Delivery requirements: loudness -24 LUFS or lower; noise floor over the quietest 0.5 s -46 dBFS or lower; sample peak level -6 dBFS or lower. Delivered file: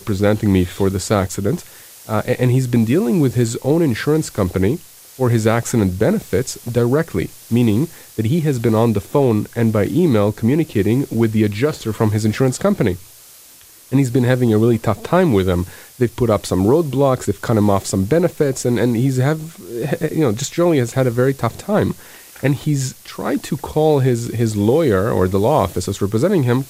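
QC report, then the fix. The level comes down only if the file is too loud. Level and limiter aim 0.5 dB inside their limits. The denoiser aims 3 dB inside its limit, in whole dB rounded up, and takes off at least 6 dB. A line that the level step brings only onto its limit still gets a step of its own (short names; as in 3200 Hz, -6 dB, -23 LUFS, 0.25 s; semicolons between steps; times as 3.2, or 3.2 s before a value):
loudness -17.5 LUFS: fail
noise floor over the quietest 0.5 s -44 dBFS: fail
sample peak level -2.0 dBFS: fail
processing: gain -7 dB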